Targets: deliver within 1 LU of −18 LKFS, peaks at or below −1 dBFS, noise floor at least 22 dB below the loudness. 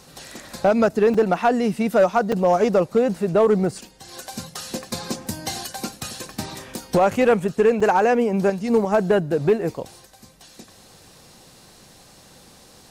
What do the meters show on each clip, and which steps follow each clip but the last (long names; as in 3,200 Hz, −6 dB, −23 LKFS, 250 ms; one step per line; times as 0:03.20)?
share of clipped samples 0.9%; peaks flattened at −10.0 dBFS; number of dropouts 3; longest dropout 4.6 ms; integrated loudness −20.5 LKFS; sample peak −10.0 dBFS; target loudness −18.0 LKFS
→ clipped peaks rebuilt −10 dBFS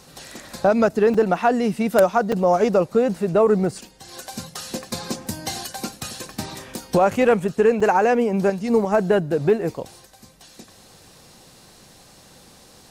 share of clipped samples 0.0%; number of dropouts 3; longest dropout 4.6 ms
→ repair the gap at 0:01.14/0:02.32/0:07.80, 4.6 ms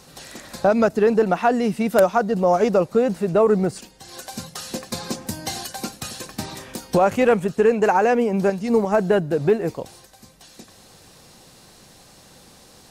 number of dropouts 0; integrated loudness −20.0 LKFS; sample peak −1.0 dBFS; target loudness −18.0 LKFS
→ level +2 dB
brickwall limiter −1 dBFS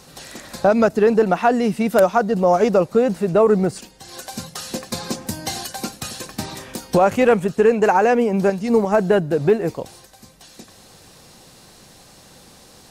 integrated loudness −18.5 LKFS; sample peak −1.0 dBFS; background noise floor −48 dBFS